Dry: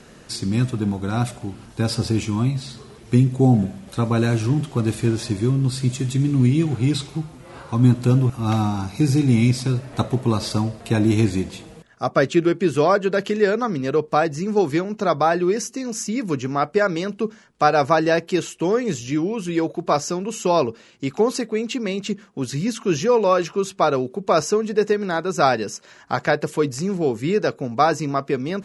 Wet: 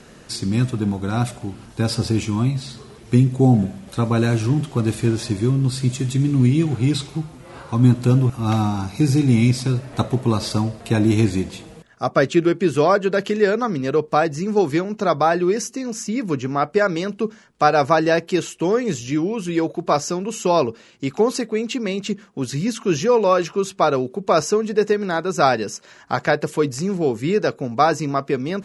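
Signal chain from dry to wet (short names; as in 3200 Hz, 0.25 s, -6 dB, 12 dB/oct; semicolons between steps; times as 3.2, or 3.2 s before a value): 15.76–16.7 high shelf 5100 Hz -5 dB; gain +1 dB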